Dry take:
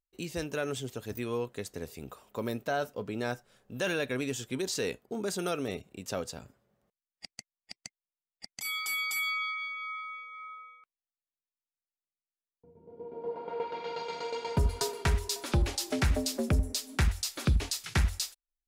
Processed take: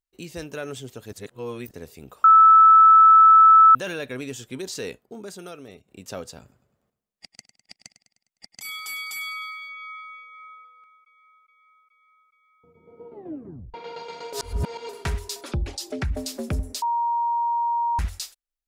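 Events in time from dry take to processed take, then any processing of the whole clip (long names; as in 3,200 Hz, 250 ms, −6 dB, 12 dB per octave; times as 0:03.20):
0:01.13–0:01.71: reverse
0:02.24–0:03.75: beep over 1,310 Hz −8.5 dBFS
0:04.88–0:05.88: fade out quadratic, to −9.5 dB
0:06.41–0:09.69: repeating echo 102 ms, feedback 52%, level −13 dB
0:10.22–0:10.62: delay throw 420 ms, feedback 80%, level −11.5 dB
0:13.11: tape stop 0.63 s
0:14.33–0:14.89: reverse
0:15.41–0:16.17: spectral envelope exaggerated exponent 1.5
0:16.82–0:17.99: beep over 940 Hz −20.5 dBFS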